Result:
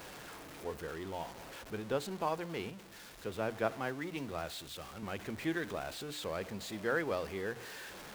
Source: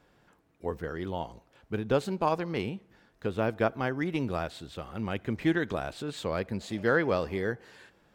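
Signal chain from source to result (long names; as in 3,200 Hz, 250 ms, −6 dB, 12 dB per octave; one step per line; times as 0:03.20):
converter with a step at zero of −34.5 dBFS
low-shelf EQ 270 Hz −6 dB
mains-hum notches 60/120/180/240/300 Hz
0:02.70–0:05.03: multiband upward and downward expander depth 40%
level −7.5 dB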